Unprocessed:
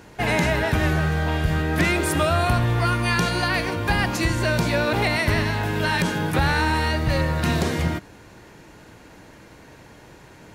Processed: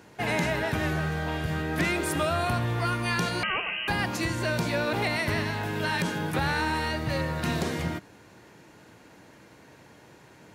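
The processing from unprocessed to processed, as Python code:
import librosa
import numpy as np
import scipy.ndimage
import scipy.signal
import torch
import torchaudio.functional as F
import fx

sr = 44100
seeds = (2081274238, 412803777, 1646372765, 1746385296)

y = scipy.signal.sosfilt(scipy.signal.butter(2, 100.0, 'highpass', fs=sr, output='sos'), x)
y = fx.freq_invert(y, sr, carrier_hz=3000, at=(3.43, 3.88))
y = y * librosa.db_to_amplitude(-5.5)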